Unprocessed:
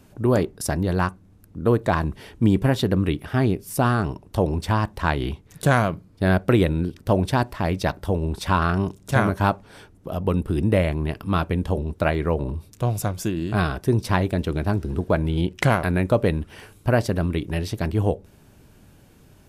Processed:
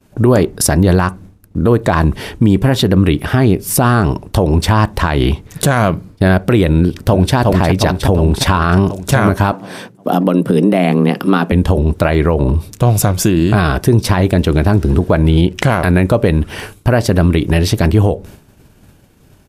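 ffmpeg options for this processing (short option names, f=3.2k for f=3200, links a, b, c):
-filter_complex "[0:a]asplit=2[a][b];[b]afade=t=in:st=6.76:d=0.01,afade=t=out:st=7.35:d=0.01,aecho=0:1:360|720|1080|1440|1800|2160|2520|2880:0.530884|0.318531|0.191118|0.114671|0.0688026|0.0412816|0.0247689|0.0148614[c];[a][c]amix=inputs=2:normalize=0,asettb=1/sr,asplit=3[d][e][f];[d]atrim=end=9.524[g];[e]atrim=start=9.52:end=11.52,asetpts=PTS-STARTPTS,afade=t=in:d=0.004:c=qsin,afade=t=out:st=1.996:d=0.004:c=qsin,afreqshift=92[h];[f]atrim=start=11.516[i];[g][h]acrossfade=d=0.004:c1=hsin:c2=qsin[j];[j][i]acrossfade=d=0.004:c1=qsin:c2=hsin,agate=range=-33dB:threshold=-42dB:ratio=3:detection=peak,acompressor=threshold=-24dB:ratio=2.5,alimiter=level_in=17.5dB:limit=-1dB:release=50:level=0:latency=1,volume=-1dB"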